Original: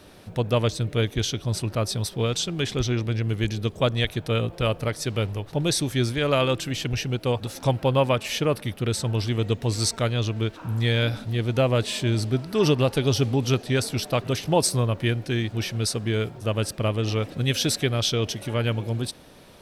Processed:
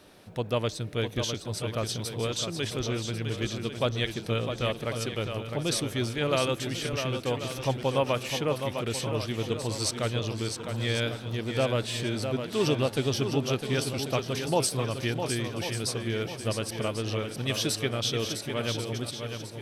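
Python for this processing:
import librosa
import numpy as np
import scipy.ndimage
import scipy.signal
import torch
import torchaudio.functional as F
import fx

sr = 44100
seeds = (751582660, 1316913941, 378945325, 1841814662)

y = fx.low_shelf(x, sr, hz=120.0, db=-8.0)
y = fx.echo_swing(y, sr, ms=1093, ratio=1.5, feedback_pct=34, wet_db=-7)
y = y * librosa.db_to_amplitude(-4.5)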